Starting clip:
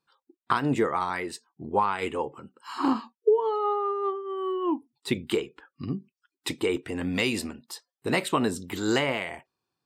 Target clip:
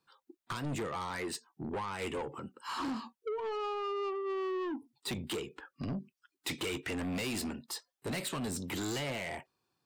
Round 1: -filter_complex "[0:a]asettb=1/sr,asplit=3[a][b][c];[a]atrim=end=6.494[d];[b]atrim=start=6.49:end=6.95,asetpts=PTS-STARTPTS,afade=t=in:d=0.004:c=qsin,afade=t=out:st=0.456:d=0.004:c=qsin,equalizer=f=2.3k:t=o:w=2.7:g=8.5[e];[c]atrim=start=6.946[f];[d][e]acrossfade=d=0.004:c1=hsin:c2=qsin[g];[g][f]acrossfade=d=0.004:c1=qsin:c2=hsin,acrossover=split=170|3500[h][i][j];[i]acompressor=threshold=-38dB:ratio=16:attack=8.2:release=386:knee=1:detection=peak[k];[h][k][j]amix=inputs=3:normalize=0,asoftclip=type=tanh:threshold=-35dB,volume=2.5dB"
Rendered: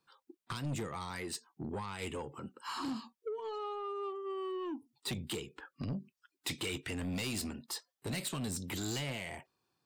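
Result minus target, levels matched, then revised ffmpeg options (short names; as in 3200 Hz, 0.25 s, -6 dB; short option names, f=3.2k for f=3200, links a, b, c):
compressor: peak gain reduction +7.5 dB
-filter_complex "[0:a]asettb=1/sr,asplit=3[a][b][c];[a]atrim=end=6.494[d];[b]atrim=start=6.49:end=6.95,asetpts=PTS-STARTPTS,afade=t=in:d=0.004:c=qsin,afade=t=out:st=0.456:d=0.004:c=qsin,equalizer=f=2.3k:t=o:w=2.7:g=8.5[e];[c]atrim=start=6.946[f];[d][e]acrossfade=d=0.004:c1=hsin:c2=qsin[g];[g][f]acrossfade=d=0.004:c1=qsin:c2=hsin,acrossover=split=170|3500[h][i][j];[i]acompressor=threshold=-30dB:ratio=16:attack=8.2:release=386:knee=1:detection=peak[k];[h][k][j]amix=inputs=3:normalize=0,asoftclip=type=tanh:threshold=-35dB,volume=2.5dB"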